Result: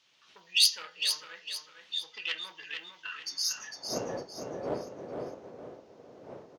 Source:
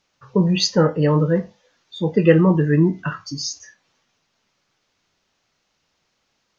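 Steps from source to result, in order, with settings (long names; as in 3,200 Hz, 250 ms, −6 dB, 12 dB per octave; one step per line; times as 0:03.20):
phase distortion by the signal itself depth 0.099 ms
wind on the microphone 120 Hz −25 dBFS
soft clipping −9 dBFS, distortion −16 dB
high-pass filter sweep 3,200 Hz → 530 Hz, 0:03.05–0:03.96
repeating echo 454 ms, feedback 35%, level −7 dB
on a send at −17 dB: convolution reverb RT60 0.65 s, pre-delay 3 ms
on the sum: level −3 dB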